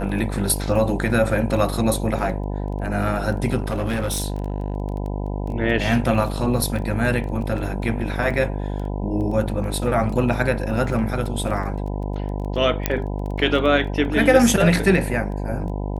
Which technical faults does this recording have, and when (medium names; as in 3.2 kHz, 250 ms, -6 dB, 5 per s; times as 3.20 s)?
buzz 50 Hz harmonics 20 -26 dBFS
crackle 11 per s -29 dBFS
3.60–4.74 s: clipped -19 dBFS
12.86 s: pop -3 dBFS